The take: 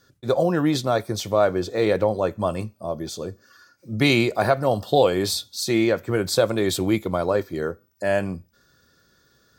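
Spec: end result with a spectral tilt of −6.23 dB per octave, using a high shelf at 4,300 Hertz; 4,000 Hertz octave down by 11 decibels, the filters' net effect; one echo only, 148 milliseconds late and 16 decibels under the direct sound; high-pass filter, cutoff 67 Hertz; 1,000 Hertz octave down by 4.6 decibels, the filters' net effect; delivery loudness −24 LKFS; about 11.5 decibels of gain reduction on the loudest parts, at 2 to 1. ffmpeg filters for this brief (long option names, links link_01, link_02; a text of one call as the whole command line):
ffmpeg -i in.wav -af "highpass=67,equalizer=frequency=1000:width_type=o:gain=-6.5,equalizer=frequency=4000:width_type=o:gain=-8.5,highshelf=frequency=4300:gain=-8,acompressor=threshold=-37dB:ratio=2,aecho=1:1:148:0.158,volume=10.5dB" out.wav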